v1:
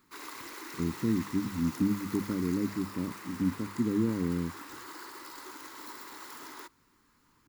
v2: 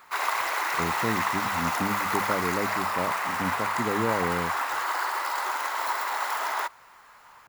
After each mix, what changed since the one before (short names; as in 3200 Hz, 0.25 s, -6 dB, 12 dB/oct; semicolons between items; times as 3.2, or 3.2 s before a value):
master: remove EQ curve 150 Hz 0 dB, 300 Hz +6 dB, 690 Hz -27 dB, 1000 Hz -19 dB, 1800 Hz -18 dB, 2800 Hz -16 dB, 4500 Hz -10 dB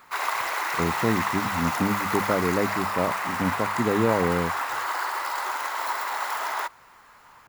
speech +5.5 dB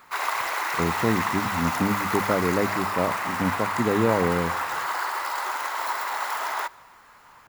reverb: on, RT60 1.0 s